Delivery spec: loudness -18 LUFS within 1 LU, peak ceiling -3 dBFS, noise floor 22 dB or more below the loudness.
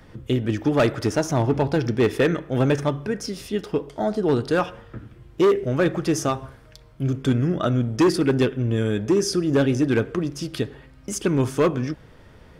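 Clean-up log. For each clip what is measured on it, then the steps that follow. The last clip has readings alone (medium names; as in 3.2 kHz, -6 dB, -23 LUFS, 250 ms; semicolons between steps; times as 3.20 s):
clipped samples 1.7%; clipping level -13.0 dBFS; loudness -22.5 LUFS; peak level -13.0 dBFS; loudness target -18.0 LUFS
-> clip repair -13 dBFS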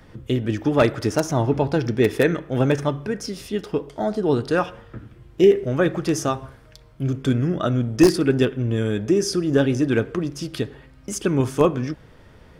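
clipped samples 0.0%; loudness -22.0 LUFS; peak level -4.0 dBFS; loudness target -18.0 LUFS
-> trim +4 dB; peak limiter -3 dBFS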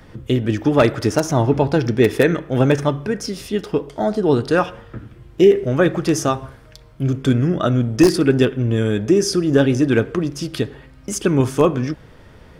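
loudness -18.0 LUFS; peak level -3.0 dBFS; noise floor -45 dBFS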